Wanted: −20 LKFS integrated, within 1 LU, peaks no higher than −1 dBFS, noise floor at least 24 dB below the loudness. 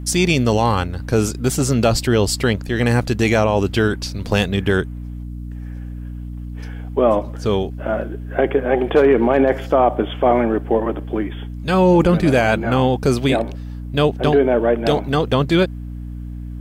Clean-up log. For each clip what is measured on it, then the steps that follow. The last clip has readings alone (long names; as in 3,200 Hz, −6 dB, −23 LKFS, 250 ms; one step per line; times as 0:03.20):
mains hum 60 Hz; hum harmonics up to 300 Hz; level of the hum −27 dBFS; integrated loudness −18.0 LKFS; sample peak −4.5 dBFS; target loudness −20.0 LKFS
→ mains-hum notches 60/120/180/240/300 Hz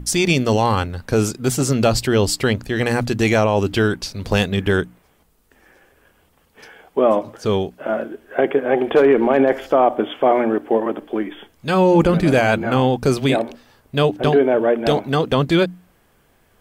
mains hum none found; integrated loudness −18.5 LKFS; sample peak −4.0 dBFS; target loudness −20.0 LKFS
→ level −1.5 dB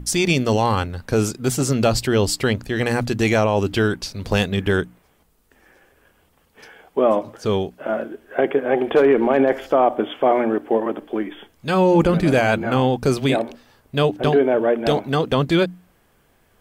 integrated loudness −20.0 LKFS; sample peak −5.5 dBFS; background noise floor −60 dBFS